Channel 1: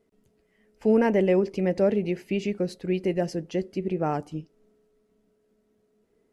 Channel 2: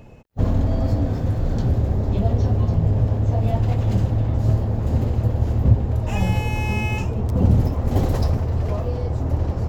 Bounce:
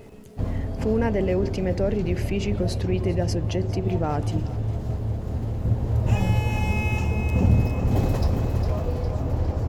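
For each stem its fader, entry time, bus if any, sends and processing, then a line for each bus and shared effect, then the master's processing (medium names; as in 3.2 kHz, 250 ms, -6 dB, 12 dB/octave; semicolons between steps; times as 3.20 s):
-4.0 dB, 0.00 s, no send, echo send -20 dB, level flattener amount 50%
-3.0 dB, 0.00 s, no send, echo send -6.5 dB, auto duck -17 dB, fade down 1.80 s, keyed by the first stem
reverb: none
echo: feedback delay 407 ms, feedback 52%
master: none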